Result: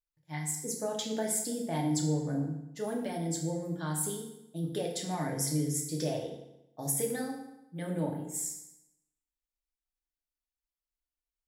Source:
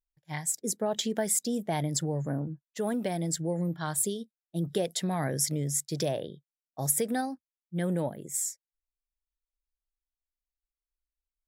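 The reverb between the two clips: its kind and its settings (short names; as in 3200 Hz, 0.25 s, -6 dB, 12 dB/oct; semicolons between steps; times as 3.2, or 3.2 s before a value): FDN reverb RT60 0.87 s, low-frequency decay 1.1×, high-frequency decay 0.85×, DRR -1 dB; gain -7 dB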